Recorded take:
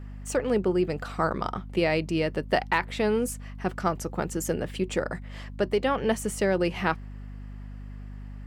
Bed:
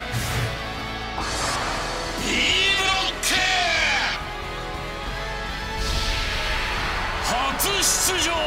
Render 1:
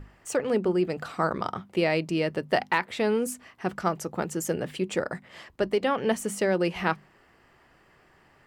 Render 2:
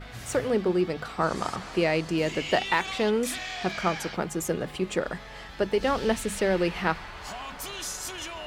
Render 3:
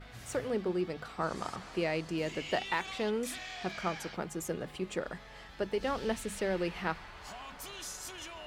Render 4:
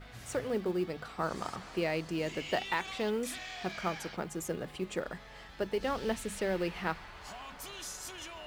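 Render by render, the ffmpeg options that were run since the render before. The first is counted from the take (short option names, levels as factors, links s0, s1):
-af "bandreject=f=50:t=h:w=6,bandreject=f=100:t=h:w=6,bandreject=f=150:t=h:w=6,bandreject=f=200:t=h:w=6,bandreject=f=250:t=h:w=6"
-filter_complex "[1:a]volume=0.178[s0];[0:a][s0]amix=inputs=2:normalize=0"
-af "volume=0.398"
-af "acrusher=bits=8:mode=log:mix=0:aa=0.000001"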